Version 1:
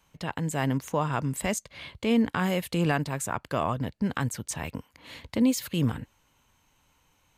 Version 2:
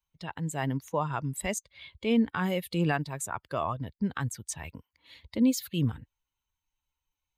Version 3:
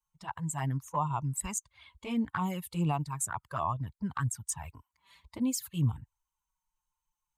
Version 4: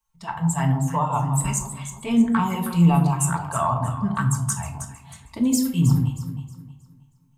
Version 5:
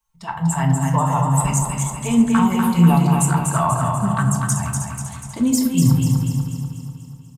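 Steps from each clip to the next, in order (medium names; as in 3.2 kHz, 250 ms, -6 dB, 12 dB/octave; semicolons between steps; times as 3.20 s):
expander on every frequency bin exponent 1.5
ten-band graphic EQ 125 Hz +3 dB, 250 Hz -5 dB, 500 Hz -11 dB, 1 kHz +11 dB, 2 kHz -5 dB, 4 kHz -8 dB, 8 kHz +8 dB; touch-sensitive flanger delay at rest 5.7 ms, full sweep at -25 dBFS
echo whose repeats swap between lows and highs 158 ms, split 980 Hz, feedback 57%, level -5.5 dB; simulated room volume 560 m³, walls furnished, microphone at 1.6 m; trim +7 dB
feedback delay 244 ms, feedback 54%, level -4.5 dB; trim +2.5 dB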